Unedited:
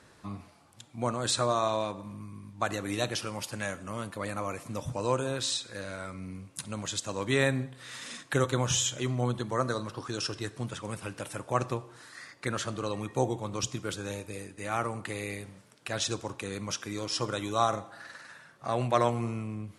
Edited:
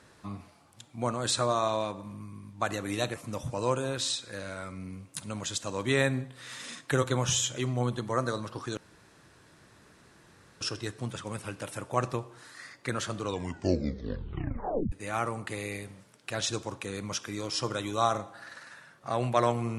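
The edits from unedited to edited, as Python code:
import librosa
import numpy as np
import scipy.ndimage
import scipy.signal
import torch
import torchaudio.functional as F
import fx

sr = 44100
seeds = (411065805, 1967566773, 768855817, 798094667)

y = fx.edit(x, sr, fx.cut(start_s=3.14, length_s=1.42),
    fx.insert_room_tone(at_s=10.19, length_s=1.84),
    fx.tape_stop(start_s=12.78, length_s=1.72), tone=tone)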